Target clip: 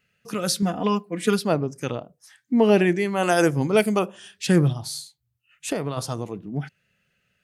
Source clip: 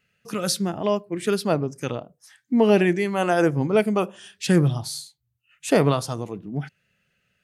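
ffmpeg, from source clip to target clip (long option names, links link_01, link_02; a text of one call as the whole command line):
ffmpeg -i in.wav -filter_complex "[0:a]asettb=1/sr,asplit=3[link_01][link_02][link_03];[link_01]atrim=end=0.624[link_04];[link_02]atrim=start=0.62:end=1.39,asetpts=PTS-STARTPTS,afade=type=in:duration=0.004:curve=qsin,afade=type=out:start_time=0.766:duration=0.004:curve=qsin,aecho=1:1:4.1:0.93,atrim=end_sample=33957[link_05];[link_03]atrim=start=1.386[link_06];[link_04][link_05]acrossfade=duration=0.004:curve1=hsin:curve2=qsin[link_07];[link_07][link_06]acrossfade=duration=0.004:curve1=qsin:curve2=hsin,asettb=1/sr,asplit=3[link_08][link_09][link_10];[link_08]atrim=end=3.234[link_11];[link_09]atrim=start=3.23:end=3.99,asetpts=PTS-STARTPTS,afade=type=in:duration=0.004:curve=qsin,afade=type=out:start_time=0.756:duration=0.004:curve=qsin,highshelf=frequency=3400:gain=12[link_12];[link_10]atrim=start=3.986[link_13];[link_11][link_12]acrossfade=duration=0.004:curve1=hsin:curve2=qsin[link_14];[link_14][link_13]acrossfade=duration=0.004:curve1=qsin:curve2=hsin,asplit=3[link_15][link_16][link_17];[link_15]afade=type=out:start_time=4.72:duration=0.02[link_18];[link_16]acompressor=threshold=-24dB:ratio=6,afade=type=in:start_time=4.72:duration=0.02,afade=type=out:start_time=5.96:duration=0.02[link_19];[link_17]afade=type=in:start_time=5.96:duration=0.02[link_20];[link_18][link_19][link_20]amix=inputs=3:normalize=0" out.wav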